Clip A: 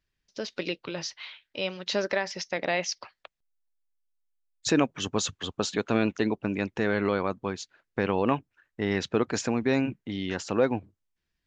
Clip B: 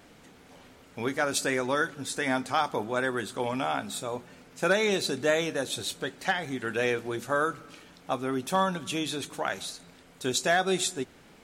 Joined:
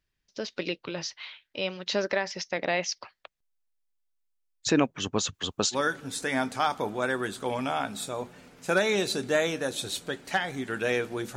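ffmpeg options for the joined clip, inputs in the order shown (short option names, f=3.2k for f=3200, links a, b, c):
-filter_complex "[0:a]asettb=1/sr,asplit=3[a][b][c];[a]atrim=end=5.344[d];[b]atrim=start=5.34:end=5.77,asetpts=PTS-STARTPTS,afade=t=in:d=0.004:c=qsin,afade=t=out:st=0.426:d=0.004:c=qsin,highshelf=f=5.3k:g=11.5[e];[c]atrim=start=5.766[f];[d][e]acrossfade=d=0.004:c1=hsin:c2=qsin[g];[g][f]acrossfade=d=0.004:c1=qsin:c2=hsin,apad=whole_dur=11.36,atrim=end=11.36,atrim=end=5.77,asetpts=PTS-STARTPTS[h];[1:a]atrim=start=1.65:end=7.3,asetpts=PTS-STARTPTS[i];[h][i]acrossfade=d=0.06:c1=tri:c2=tri"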